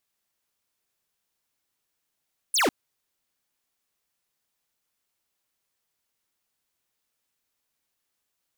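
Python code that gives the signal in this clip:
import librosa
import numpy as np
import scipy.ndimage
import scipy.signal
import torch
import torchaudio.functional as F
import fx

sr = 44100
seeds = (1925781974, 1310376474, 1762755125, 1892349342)

y = fx.laser_zap(sr, level_db=-21.5, start_hz=11000.0, end_hz=220.0, length_s=0.15, wave='square')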